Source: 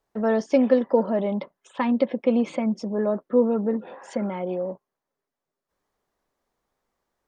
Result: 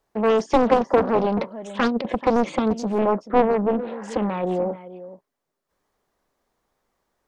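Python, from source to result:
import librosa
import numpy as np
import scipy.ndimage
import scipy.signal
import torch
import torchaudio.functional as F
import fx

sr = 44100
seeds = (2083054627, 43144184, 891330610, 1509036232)

y = fx.over_compress(x, sr, threshold_db=-23.0, ratio=-0.5, at=(1.39, 2.15))
y = 10.0 ** (-12.5 / 20.0) * np.tanh(y / 10.0 ** (-12.5 / 20.0))
y = y + 10.0 ** (-15.0 / 20.0) * np.pad(y, (int(433 * sr / 1000.0), 0))[:len(y)]
y = fx.doppler_dist(y, sr, depth_ms=0.91)
y = y * 10.0 ** (4.5 / 20.0)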